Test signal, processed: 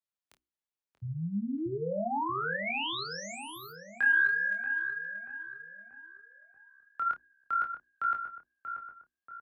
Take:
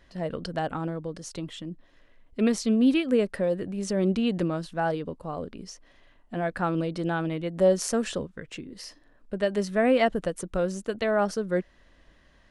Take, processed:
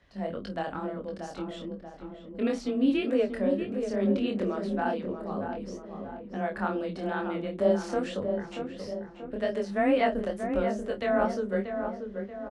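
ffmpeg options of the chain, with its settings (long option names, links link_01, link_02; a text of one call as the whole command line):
ffmpeg -i in.wav -filter_complex "[0:a]afreqshift=18,highshelf=frequency=6600:gain=-8.5,bandreject=frequency=60:width_type=h:width=6,bandreject=frequency=120:width_type=h:width=6,bandreject=frequency=180:width_type=h:width=6,bandreject=frequency=240:width_type=h:width=6,bandreject=frequency=300:width_type=h:width=6,bandreject=frequency=360:width_type=h:width=6,flanger=delay=19.5:depth=6.4:speed=2.2,acrossover=split=4500[link_01][link_02];[link_02]acompressor=threshold=-52dB:ratio=4:attack=1:release=60[link_03];[link_01][link_03]amix=inputs=2:normalize=0,asplit=2[link_04][link_05];[link_05]adelay=30,volume=-11.5dB[link_06];[link_04][link_06]amix=inputs=2:normalize=0,asplit=2[link_07][link_08];[link_08]adelay=634,lowpass=frequency=1600:poles=1,volume=-6.5dB,asplit=2[link_09][link_10];[link_10]adelay=634,lowpass=frequency=1600:poles=1,volume=0.54,asplit=2[link_11][link_12];[link_12]adelay=634,lowpass=frequency=1600:poles=1,volume=0.54,asplit=2[link_13][link_14];[link_14]adelay=634,lowpass=frequency=1600:poles=1,volume=0.54,asplit=2[link_15][link_16];[link_16]adelay=634,lowpass=frequency=1600:poles=1,volume=0.54,asplit=2[link_17][link_18];[link_18]adelay=634,lowpass=frequency=1600:poles=1,volume=0.54,asplit=2[link_19][link_20];[link_20]adelay=634,lowpass=frequency=1600:poles=1,volume=0.54[link_21];[link_07][link_09][link_11][link_13][link_15][link_17][link_19][link_21]amix=inputs=8:normalize=0" out.wav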